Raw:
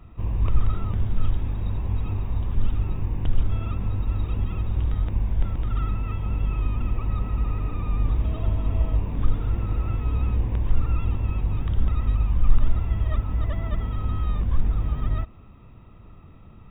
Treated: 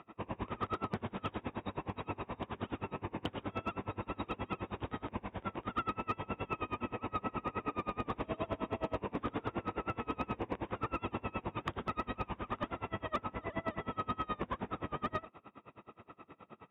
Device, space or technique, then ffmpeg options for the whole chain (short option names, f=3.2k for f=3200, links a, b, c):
helicopter radio: -af "highpass=350,lowpass=2.9k,aeval=exprs='val(0)*pow(10,-29*(0.5-0.5*cos(2*PI*9.5*n/s))/20)':c=same,asoftclip=type=hard:threshold=-34dB,volume=9dB"